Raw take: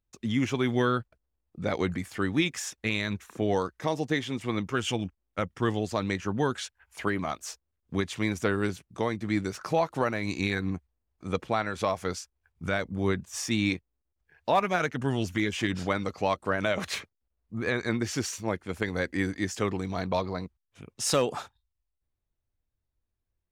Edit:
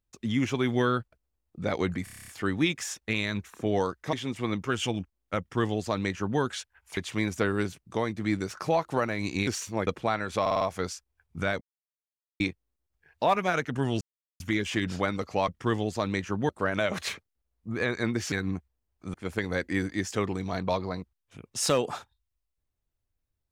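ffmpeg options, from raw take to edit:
ffmpeg -i in.wav -filter_complex "[0:a]asplit=24[link_01][link_02][link_03][link_04][link_05][link_06][link_07][link_08][link_09][link_10][link_11][link_12][link_13][link_14][link_15][link_16][link_17][link_18][link_19][link_20][link_21][link_22][link_23][link_24];[link_01]atrim=end=2.072[link_25];[link_02]atrim=start=2.038:end=2.072[link_26];[link_03]atrim=start=2.038:end=2.072[link_27];[link_04]atrim=start=2.038:end=2.072[link_28];[link_05]atrim=start=2.038:end=2.072[link_29];[link_06]atrim=start=2.038:end=2.072[link_30];[link_07]atrim=start=2.038:end=2.072[link_31];[link_08]atrim=start=2.038:end=2.072[link_32];[link_09]atrim=start=2.038:end=3.892[link_33];[link_10]atrim=start=4.178:end=7.022[link_34];[link_11]atrim=start=8.008:end=10.512[link_35];[link_12]atrim=start=18.178:end=18.582[link_36];[link_13]atrim=start=11.328:end=11.922[link_37];[link_14]atrim=start=11.868:end=11.922[link_38];[link_15]atrim=start=11.868:end=11.922[link_39];[link_16]atrim=start=11.868:end=11.922[link_40];[link_17]atrim=start=11.868:end=12.87,asetpts=PTS-STARTPTS,afade=type=out:start_time=0.998:duration=0.004:curve=hsin[link_41];[link_18]atrim=start=12.87:end=13.66,asetpts=PTS-STARTPTS,volume=0[link_42];[link_19]atrim=start=13.66:end=15.27,asetpts=PTS-STARTPTS,afade=type=in:duration=0.004:curve=hsin,afade=type=out:start_time=1.606:duration=0.004:curve=hsin,apad=pad_dur=0.39[link_43];[link_20]atrim=start=15.27:end=16.352,asetpts=PTS-STARTPTS,afade=type=in:duration=0.004:curve=hsin[link_44];[link_21]atrim=start=5.438:end=6.452[link_45];[link_22]atrim=start=16.348:end=18.182[link_46];[link_23]atrim=start=10.508:end=11.332[link_47];[link_24]atrim=start=18.578[link_48];[link_25][link_26]acrossfade=duration=0.004:curve1=hsin:curve2=hsin[link_49];[link_49][link_27]acrossfade=duration=0.004:curve1=hsin:curve2=hsin[link_50];[link_50][link_28]acrossfade=duration=0.004:curve1=hsin:curve2=hsin[link_51];[link_51][link_29]acrossfade=duration=0.004:curve1=hsin:curve2=hsin[link_52];[link_52][link_30]acrossfade=duration=0.004:curve1=hsin:curve2=hsin[link_53];[link_53][link_31]acrossfade=duration=0.004:curve1=hsin:curve2=hsin[link_54];[link_54][link_32]acrossfade=duration=0.004:curve1=hsin:curve2=hsin[link_55];[link_55][link_33]acrossfade=duration=0.004:curve1=hsin:curve2=hsin[link_56];[link_56][link_34]acrossfade=duration=0.004:curve1=hsin:curve2=hsin[link_57];[link_57][link_35]acrossfade=duration=0.004:curve1=hsin:curve2=hsin[link_58];[link_58][link_36]acrossfade=duration=0.004:curve1=hsin:curve2=hsin[link_59];[link_59][link_37]acrossfade=duration=0.004:curve1=hsin:curve2=hsin[link_60];[link_60][link_38]acrossfade=duration=0.004:curve1=hsin:curve2=hsin[link_61];[link_61][link_39]acrossfade=duration=0.004:curve1=hsin:curve2=hsin[link_62];[link_62][link_40]acrossfade=duration=0.004:curve1=hsin:curve2=hsin[link_63];[link_41][link_42][link_43][link_44]concat=n=4:v=0:a=1[link_64];[link_63][link_64]acrossfade=duration=0.004:curve1=hsin:curve2=hsin[link_65];[link_65][link_45]acrossfade=duration=0.004:curve1=hsin:curve2=hsin[link_66];[link_66][link_46]acrossfade=duration=0.004:curve1=hsin:curve2=hsin[link_67];[link_67][link_47]acrossfade=duration=0.004:curve1=hsin:curve2=hsin[link_68];[link_68][link_48]acrossfade=duration=0.004:curve1=hsin:curve2=hsin" out.wav

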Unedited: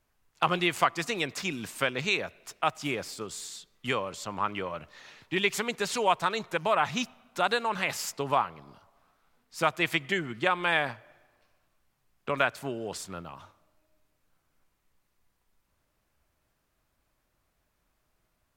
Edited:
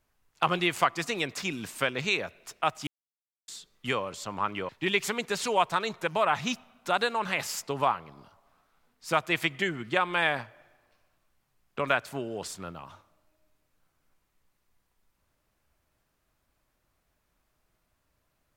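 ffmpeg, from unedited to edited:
ffmpeg -i in.wav -filter_complex "[0:a]asplit=4[link_01][link_02][link_03][link_04];[link_01]atrim=end=2.87,asetpts=PTS-STARTPTS,afade=type=out:start_time=2.866:duration=0.004:curve=hsin[link_05];[link_02]atrim=start=2.87:end=3.48,asetpts=PTS-STARTPTS,volume=0[link_06];[link_03]atrim=start=3.48:end=4.692,asetpts=PTS-STARTPTS,afade=type=in:duration=0.004:curve=hsin[link_07];[link_04]atrim=start=5.188[link_08];[link_05][link_06][link_07]concat=n=3:v=0:a=1[link_09];[link_09][link_08]acrossfade=duration=0.004:curve1=hsin:curve2=hsin" out.wav

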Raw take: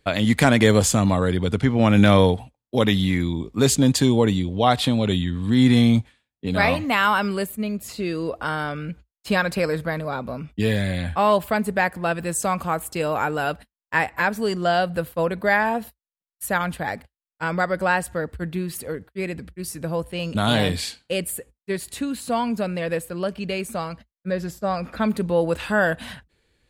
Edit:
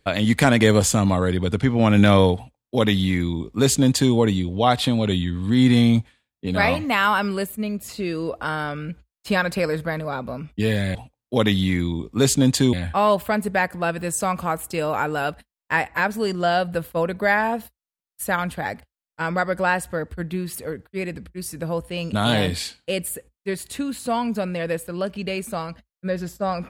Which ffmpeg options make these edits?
ffmpeg -i in.wav -filter_complex "[0:a]asplit=3[link_01][link_02][link_03];[link_01]atrim=end=10.952[link_04];[link_02]atrim=start=2.358:end=4.142[link_05];[link_03]atrim=start=10.948[link_06];[link_04][link_05]acrossfade=duration=0.004:curve1=hsin:curve2=hsin[link_07];[link_07][link_06]acrossfade=duration=0.004:curve1=hsin:curve2=hsin" out.wav

